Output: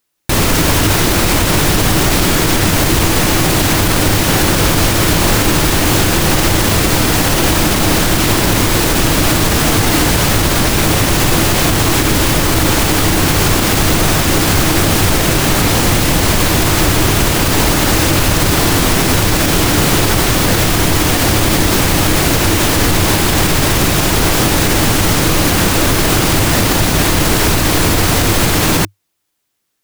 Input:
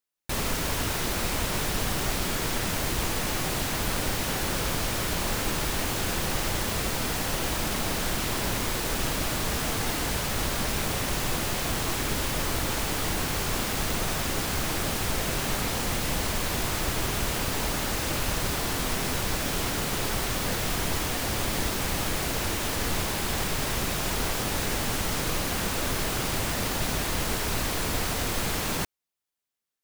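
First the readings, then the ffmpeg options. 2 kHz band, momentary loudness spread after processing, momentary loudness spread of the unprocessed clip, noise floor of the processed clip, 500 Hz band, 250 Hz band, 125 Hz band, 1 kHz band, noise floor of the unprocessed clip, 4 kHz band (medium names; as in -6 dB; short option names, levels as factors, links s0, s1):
+15.0 dB, 1 LU, 0 LU, -14 dBFS, +16.0 dB, +18.5 dB, +18.5 dB, +15.0 dB, -30 dBFS, +15.0 dB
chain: -af "equalizer=f=100:t=o:w=0.33:g=7,equalizer=f=160:t=o:w=0.33:g=4,equalizer=f=315:t=o:w=0.33:g=7,alimiter=level_in=7.94:limit=0.891:release=50:level=0:latency=1,volume=0.891"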